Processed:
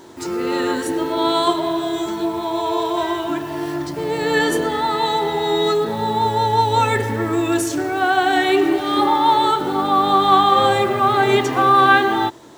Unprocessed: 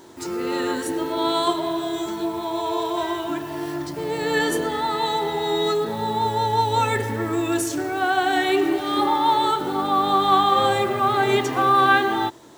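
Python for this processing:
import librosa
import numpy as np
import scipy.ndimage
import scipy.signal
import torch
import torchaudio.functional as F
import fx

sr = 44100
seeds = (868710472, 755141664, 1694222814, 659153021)

y = fx.high_shelf(x, sr, hz=7200.0, db=-4.0)
y = y * 10.0 ** (4.0 / 20.0)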